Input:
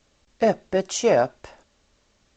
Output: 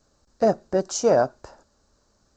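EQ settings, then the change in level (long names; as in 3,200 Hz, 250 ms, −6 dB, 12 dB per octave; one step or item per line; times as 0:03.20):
flat-topped bell 2,600 Hz −13 dB 1.1 octaves
0.0 dB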